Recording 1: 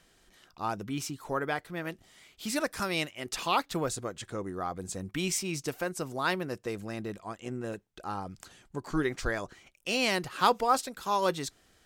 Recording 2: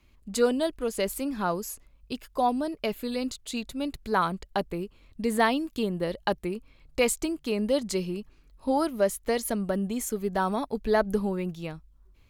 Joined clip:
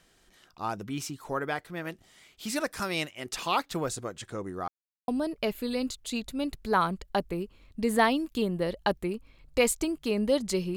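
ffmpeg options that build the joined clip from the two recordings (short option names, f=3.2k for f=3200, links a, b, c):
-filter_complex "[0:a]apad=whole_dur=10.76,atrim=end=10.76,asplit=2[a][b];[a]atrim=end=4.68,asetpts=PTS-STARTPTS,afade=t=out:st=4.676:d=0.004:c=hsin[c];[b]atrim=start=4.68:end=5.08,asetpts=PTS-STARTPTS,volume=0[d];[1:a]atrim=start=2.49:end=8.17,asetpts=PTS-STARTPTS,afade=t=in:d=0.004:c=hsin[e];[c][d][e]concat=n=3:v=0:a=1"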